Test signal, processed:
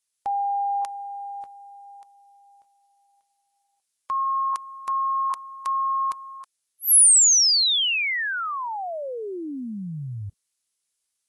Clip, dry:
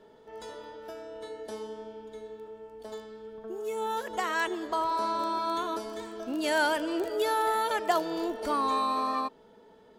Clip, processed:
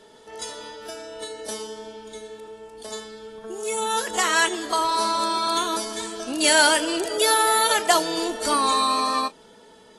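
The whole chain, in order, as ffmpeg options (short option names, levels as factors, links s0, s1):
-af "crystalizer=i=6.5:c=0,volume=1.41" -ar 24000 -c:a aac -b:a 32k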